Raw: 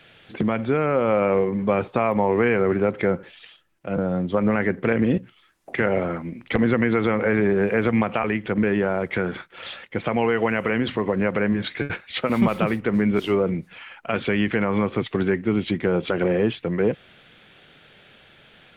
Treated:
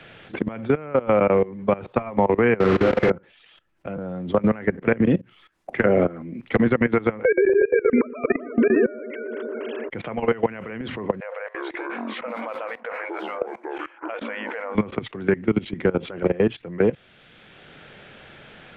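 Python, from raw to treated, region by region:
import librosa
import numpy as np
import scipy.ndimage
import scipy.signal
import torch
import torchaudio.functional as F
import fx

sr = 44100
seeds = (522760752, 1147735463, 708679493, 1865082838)

y = fx.chain(x, sr, fx.delta_mod(bps=64000, step_db=-19.0),
    fx.lowpass(hz=2600.0, slope=12),
    fx.room_flutter(wall_m=7.3, rt60_s=0.91), at=(2.6, 3.1))
y = fx.chain(y, sr, fx.peak_eq(hz=310.0, db=7.0, octaves=2.6),
    fx.notch(hz=890.0, q=8.5), at=(5.85, 6.4))
y = fx.chain(y, sr, fx.sine_speech(),
    fx.echo_bbd(ms=121, stages=1024, feedback_pct=76, wet_db=-6.5), at=(7.25, 9.9))
y = fx.chain(y, sr, fx.brickwall_highpass(low_hz=450.0),
    fx.high_shelf(hz=3300.0, db=-9.5),
    fx.echo_pitch(ms=346, semitones=-7, count=2, db_per_echo=-6.0), at=(11.2, 14.75))
y = fx.level_steps(y, sr, step_db=20)
y = fx.lowpass(y, sr, hz=3500.0, slope=6)
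y = fx.band_squash(y, sr, depth_pct=40)
y = y * 10.0 ** (4.0 / 20.0)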